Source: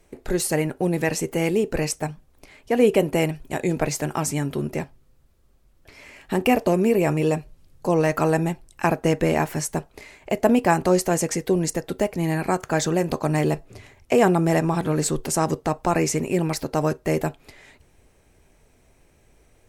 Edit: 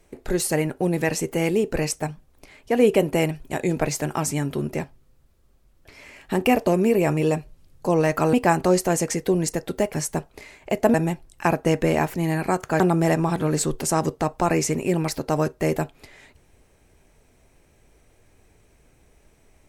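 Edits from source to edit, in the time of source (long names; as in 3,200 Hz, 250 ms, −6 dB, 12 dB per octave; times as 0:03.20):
0:08.33–0:09.53: swap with 0:10.54–0:12.14
0:12.80–0:14.25: remove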